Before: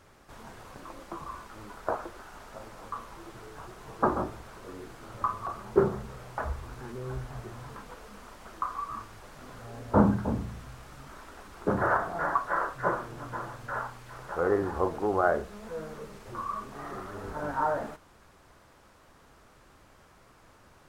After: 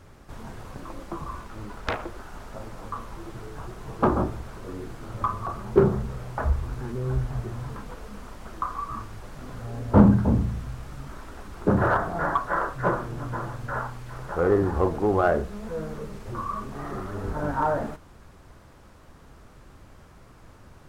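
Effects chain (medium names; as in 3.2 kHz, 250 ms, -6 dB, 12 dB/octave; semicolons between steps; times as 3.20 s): 1.40–2.09 s: self-modulated delay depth 0.7 ms; bass shelf 290 Hz +10.5 dB; in parallel at -7.5 dB: overload inside the chain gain 19.5 dB; on the sum: trim -1 dB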